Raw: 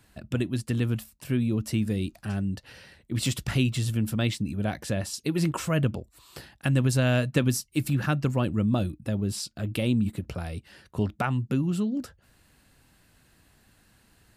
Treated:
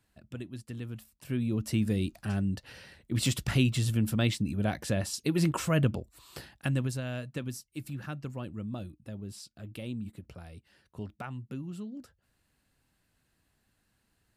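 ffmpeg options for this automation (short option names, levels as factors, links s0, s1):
-af "volume=0.891,afade=t=in:st=0.93:d=0.95:silence=0.251189,afade=t=out:st=6.38:d=0.64:silence=0.251189"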